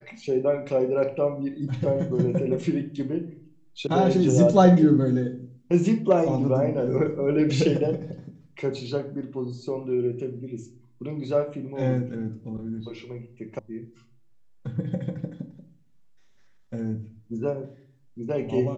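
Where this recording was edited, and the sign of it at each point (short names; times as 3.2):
3.87 sound cut off
13.59 sound cut off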